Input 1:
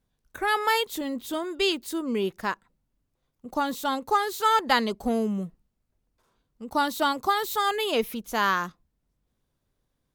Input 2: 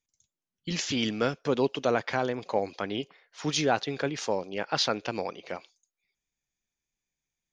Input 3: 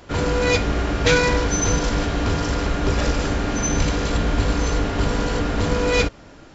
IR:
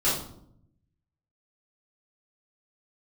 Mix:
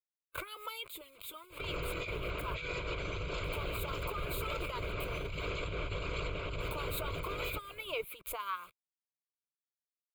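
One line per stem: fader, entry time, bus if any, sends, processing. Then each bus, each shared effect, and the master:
-10.5 dB, 0.00 s, bus A, no send, peaking EQ 960 Hz +6.5 dB 0.82 oct; bit crusher 7-bit; swell ahead of each attack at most 79 dB/s
mute
-5.5 dB, 1.50 s, bus A, no send, none
bus A: 0.0 dB, harmonic-percussive split harmonic -17 dB; peak limiter -25 dBFS, peak gain reduction 10 dB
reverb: none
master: peaking EQ 2.3 kHz +11 dB 0.25 oct; compressor with a negative ratio -34 dBFS, ratio -0.5; static phaser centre 1.2 kHz, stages 8

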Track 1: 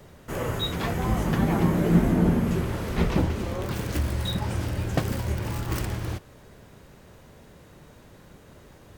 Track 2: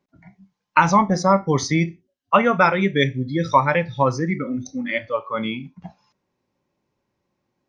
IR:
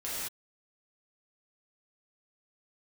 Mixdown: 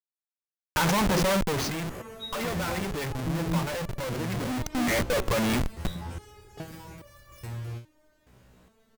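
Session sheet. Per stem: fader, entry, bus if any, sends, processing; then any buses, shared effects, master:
0.0 dB, 1.60 s, no send, resonator arpeggio 2.4 Hz 62–580 Hz
1.37 s -3 dB -> 1.74 s -11.5 dB -> 4.40 s -11.5 dB -> 4.93 s -4.5 dB, 0.00 s, no send, graphic EQ 500/1000/2000 Hz +5/-3/+6 dB; Schmitt trigger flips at -28.5 dBFS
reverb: none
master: none

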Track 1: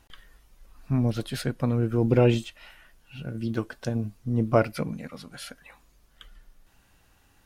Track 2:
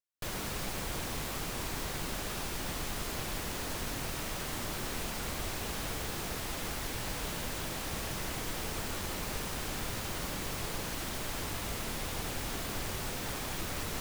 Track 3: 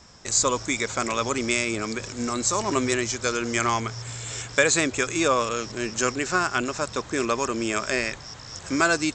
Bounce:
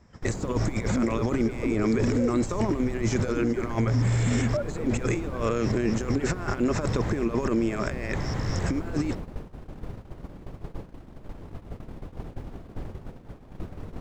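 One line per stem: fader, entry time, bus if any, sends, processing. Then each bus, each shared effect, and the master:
-9.0 dB, 0.00 s, no send, formants replaced by sine waves; three bands compressed up and down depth 70%
-3.0 dB, 0.00 s, no send, low-pass 2.8 kHz 6 dB/octave
+1.5 dB, 0.00 s, no send, peaking EQ 2 kHz +8.5 dB 0.56 oct; compressor with a negative ratio -29 dBFS, ratio -0.5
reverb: none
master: gate -39 dBFS, range -18 dB; tilt shelf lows +10 dB; peak limiter -16 dBFS, peak gain reduction 10 dB

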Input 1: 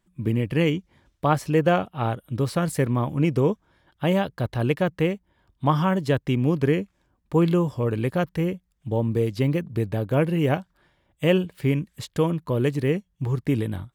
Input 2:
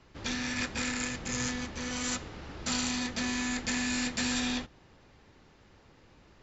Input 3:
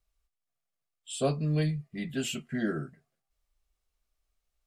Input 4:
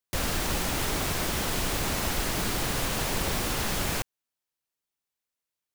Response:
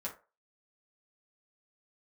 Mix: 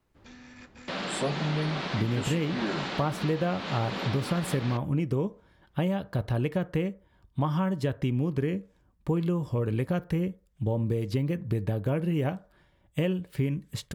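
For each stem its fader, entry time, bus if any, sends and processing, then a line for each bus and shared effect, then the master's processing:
-3.0 dB, 1.75 s, send -11.5 dB, bass shelf 190 Hz +6.5 dB
-14.0 dB, 0.00 s, no send, treble shelf 2.8 kHz -10.5 dB
+0.5 dB, 0.00 s, no send, none
-3.5 dB, 0.75 s, send -7 dB, Chebyshev band-pass 180–4100 Hz, order 3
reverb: on, RT60 0.35 s, pre-delay 5 ms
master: compression, threshold -24 dBFS, peak gain reduction 10.5 dB

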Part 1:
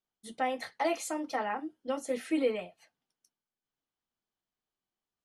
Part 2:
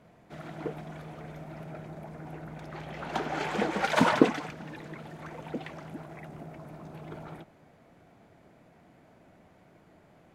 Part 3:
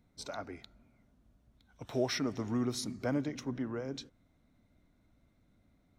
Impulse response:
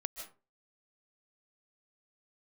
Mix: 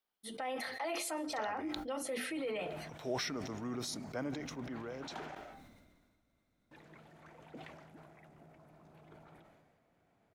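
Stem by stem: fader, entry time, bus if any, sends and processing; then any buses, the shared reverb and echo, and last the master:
+3.0 dB, 0.00 s, bus A, send -18.5 dB, peaking EQ 6.9 kHz -9.5 dB 0.58 oct; hum notches 50/100/150/200/250/300/350/400/450 Hz; peak limiter -26 dBFS, peak gain reduction 7.5 dB
-16.0 dB, 2.00 s, muted 5.35–6.71 s, bus A, send -8.5 dB, bass shelf 140 Hz +8.5 dB
-3.5 dB, 1.10 s, no bus, no send, none
bus A: 0.0 dB, peak limiter -30.5 dBFS, peak gain reduction 7.5 dB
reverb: on, RT60 0.35 s, pre-delay 110 ms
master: bass shelf 290 Hz -9 dB; decay stretcher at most 35 dB/s

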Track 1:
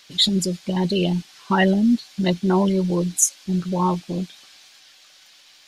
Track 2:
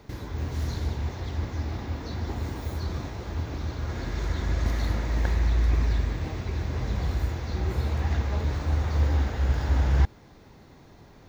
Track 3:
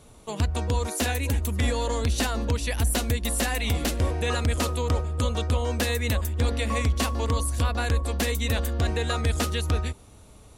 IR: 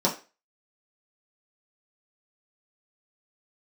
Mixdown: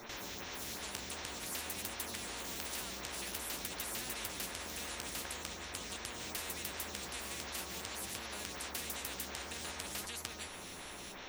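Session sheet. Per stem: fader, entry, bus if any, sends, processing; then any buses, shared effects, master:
mute
+2.5 dB, 0.00 s, send -11.5 dB, compression, threshold -29 dBFS, peak gain reduction 12.5 dB; lamp-driven phase shifter 2.7 Hz
-4.5 dB, 0.55 s, no send, compression, threshold -28 dBFS, peak gain reduction 9.5 dB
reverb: on, RT60 0.30 s, pre-delay 3 ms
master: peaking EQ 2.6 kHz +7 dB; flange 0.49 Hz, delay 8.1 ms, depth 7.7 ms, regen +47%; spectrum-flattening compressor 4:1

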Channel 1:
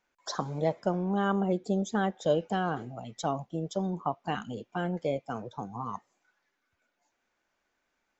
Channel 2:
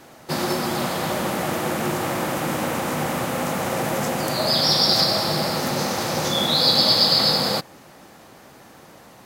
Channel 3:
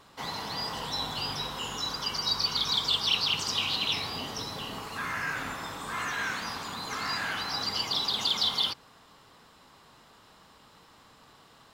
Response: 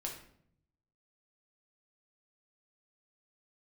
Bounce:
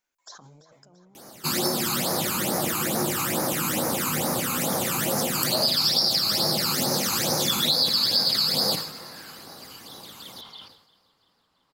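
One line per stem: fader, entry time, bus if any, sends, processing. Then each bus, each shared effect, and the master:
-16.5 dB, 0.00 s, bus A, no send, echo send -12 dB, compressor with a negative ratio -38 dBFS, ratio -1; treble shelf 5.3 kHz +4 dB
-0.5 dB, 1.15 s, bus A, no send, echo send -23.5 dB, high-pass 130 Hz 6 dB/octave; phase shifter stages 12, 2.3 Hz, lowest notch 570–3000 Hz
-14.5 dB, 1.95 s, no bus, no send, echo send -22.5 dB, treble shelf 4.6 kHz -10 dB
bus A: 0.0 dB, treble shelf 2.6 kHz +6 dB; compression 10:1, threshold -21 dBFS, peak gain reduction 13 dB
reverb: none
echo: feedback delay 338 ms, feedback 57%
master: treble shelf 6.7 kHz +7 dB; decay stretcher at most 82 dB/s

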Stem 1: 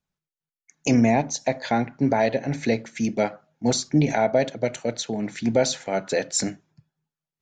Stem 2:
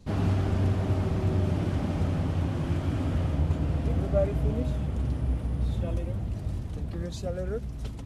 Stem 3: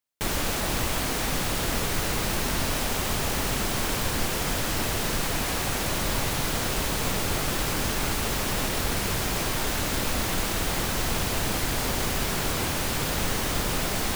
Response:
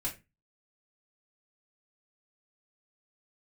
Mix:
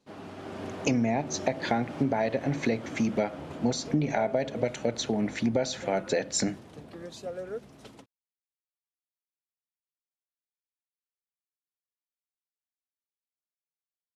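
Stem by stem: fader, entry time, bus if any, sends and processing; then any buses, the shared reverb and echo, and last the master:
+2.0 dB, 0.00 s, no send, none
-9.5 dB, 0.00 s, no send, level rider gain up to 8 dB; high-pass 310 Hz 12 dB/octave; treble shelf 5.5 kHz +6 dB
mute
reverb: none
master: treble shelf 6.8 kHz -11 dB; compression 6:1, threshold -23 dBFS, peak gain reduction 11 dB

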